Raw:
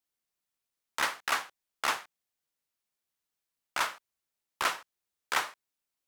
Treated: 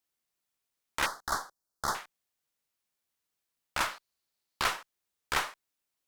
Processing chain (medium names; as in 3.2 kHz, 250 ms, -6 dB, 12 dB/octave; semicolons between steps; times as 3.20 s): single-diode clipper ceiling -29 dBFS; 1.06–1.95 s: Chebyshev band-stop 1.4–4.6 kHz, order 2; 3.91–4.65 s: peaking EQ 4.4 kHz +7.5 dB 0.42 oct; trim +2 dB